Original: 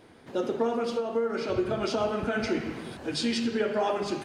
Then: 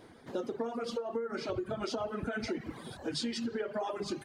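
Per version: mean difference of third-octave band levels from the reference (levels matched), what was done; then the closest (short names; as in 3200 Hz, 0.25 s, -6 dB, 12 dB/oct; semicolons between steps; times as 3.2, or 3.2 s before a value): 3.5 dB: reverb removal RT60 1.1 s; bell 2600 Hz -5.5 dB 0.38 oct; compressor, threshold -32 dBFS, peak gain reduction 9.5 dB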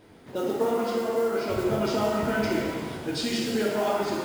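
5.5 dB: modulation noise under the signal 22 dB; low shelf 260 Hz +4 dB; shimmer reverb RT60 1.4 s, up +7 st, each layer -8 dB, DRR 0 dB; gain -2 dB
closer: first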